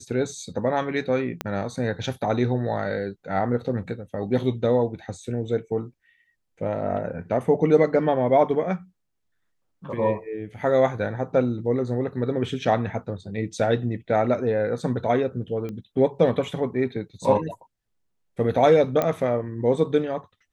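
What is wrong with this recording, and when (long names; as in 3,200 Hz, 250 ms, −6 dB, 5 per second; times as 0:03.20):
0:01.41: click −12 dBFS
0:15.69: click −22 dBFS
0:19.02: click −10 dBFS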